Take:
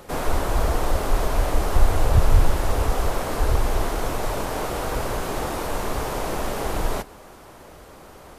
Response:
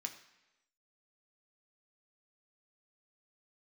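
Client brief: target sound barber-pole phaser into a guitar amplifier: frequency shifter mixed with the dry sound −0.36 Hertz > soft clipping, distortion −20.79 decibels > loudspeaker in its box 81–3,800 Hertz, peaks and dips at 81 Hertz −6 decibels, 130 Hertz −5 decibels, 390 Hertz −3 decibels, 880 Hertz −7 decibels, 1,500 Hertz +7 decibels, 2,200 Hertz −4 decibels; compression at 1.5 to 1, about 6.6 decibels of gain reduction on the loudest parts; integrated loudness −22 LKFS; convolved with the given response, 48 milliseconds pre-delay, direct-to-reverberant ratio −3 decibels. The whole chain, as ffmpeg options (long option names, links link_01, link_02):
-filter_complex "[0:a]acompressor=threshold=-28dB:ratio=1.5,asplit=2[link_01][link_02];[1:a]atrim=start_sample=2205,adelay=48[link_03];[link_02][link_03]afir=irnorm=-1:irlink=0,volume=5dB[link_04];[link_01][link_04]amix=inputs=2:normalize=0,asplit=2[link_05][link_06];[link_06]afreqshift=-0.36[link_07];[link_05][link_07]amix=inputs=2:normalize=1,asoftclip=threshold=-16dB,highpass=81,equalizer=frequency=81:width_type=q:width=4:gain=-6,equalizer=frequency=130:width_type=q:width=4:gain=-5,equalizer=frequency=390:width_type=q:width=4:gain=-3,equalizer=frequency=880:width_type=q:width=4:gain=-7,equalizer=frequency=1500:width_type=q:width=4:gain=7,equalizer=frequency=2200:width_type=q:width=4:gain=-4,lowpass=frequency=3800:width=0.5412,lowpass=frequency=3800:width=1.3066,volume=10dB"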